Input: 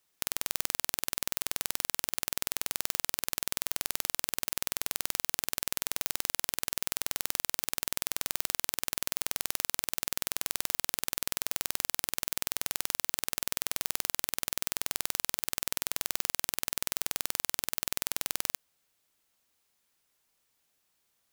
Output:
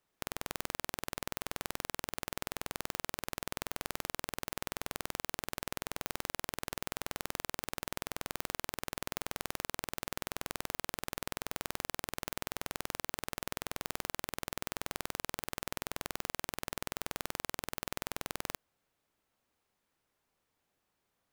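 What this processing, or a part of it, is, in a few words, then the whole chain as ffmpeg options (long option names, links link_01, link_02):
through cloth: -af "highshelf=frequency=2400:gain=-14.5,volume=3dB"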